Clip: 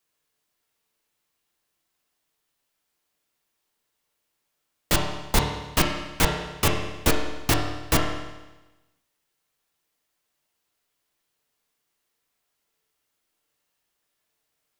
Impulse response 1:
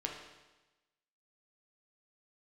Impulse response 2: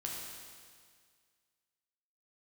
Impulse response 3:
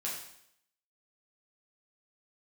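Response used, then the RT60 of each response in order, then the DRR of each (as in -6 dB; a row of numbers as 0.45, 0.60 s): 1; 1.1, 1.9, 0.70 s; 0.0, -2.5, -5.5 dB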